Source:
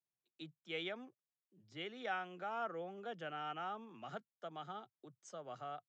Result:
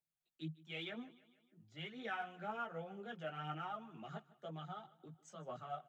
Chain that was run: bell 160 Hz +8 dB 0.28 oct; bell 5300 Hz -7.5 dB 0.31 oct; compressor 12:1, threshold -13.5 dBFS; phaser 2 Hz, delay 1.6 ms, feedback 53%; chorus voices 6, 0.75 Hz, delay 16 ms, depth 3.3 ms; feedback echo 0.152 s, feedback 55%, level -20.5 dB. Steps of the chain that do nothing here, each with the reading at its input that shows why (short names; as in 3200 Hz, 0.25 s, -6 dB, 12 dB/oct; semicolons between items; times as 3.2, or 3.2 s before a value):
compressor, threshold -13.5 dBFS: input peak -27.0 dBFS